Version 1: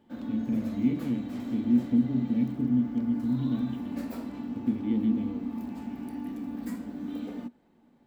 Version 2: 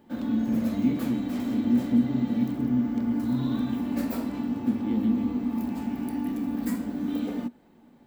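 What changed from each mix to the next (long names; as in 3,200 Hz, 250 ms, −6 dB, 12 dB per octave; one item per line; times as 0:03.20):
background +6.5 dB
master: add high-shelf EQ 11,000 Hz +7.5 dB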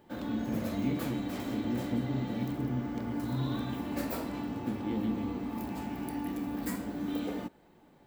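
master: add parametric band 240 Hz −13.5 dB 0.34 octaves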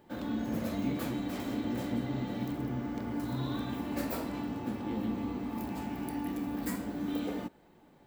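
speech −3.5 dB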